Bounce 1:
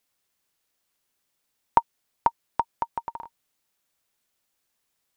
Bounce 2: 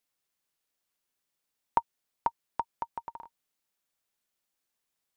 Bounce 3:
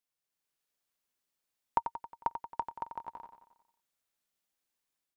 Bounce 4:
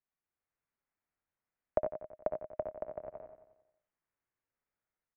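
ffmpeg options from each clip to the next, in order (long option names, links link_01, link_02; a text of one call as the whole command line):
ffmpeg -i in.wav -af "equalizer=frequency=88:width=3.8:gain=-7.5,volume=-7dB" out.wav
ffmpeg -i in.wav -filter_complex "[0:a]dynaudnorm=framelen=150:gausssize=5:maxgain=5dB,asplit=2[link_01][link_02];[link_02]aecho=0:1:90|180|270|360|450|540:0.355|0.195|0.107|0.059|0.0325|0.0179[link_03];[link_01][link_03]amix=inputs=2:normalize=0,volume=-8dB" out.wav
ffmpeg -i in.wav -af "aecho=1:1:60|72:0.316|0.376,highpass=frequency=160:width_type=q:width=0.5412,highpass=frequency=160:width_type=q:width=1.307,lowpass=frequency=2500:width_type=q:width=0.5176,lowpass=frequency=2500:width_type=q:width=0.7071,lowpass=frequency=2500:width_type=q:width=1.932,afreqshift=-310,volume=-1.5dB" out.wav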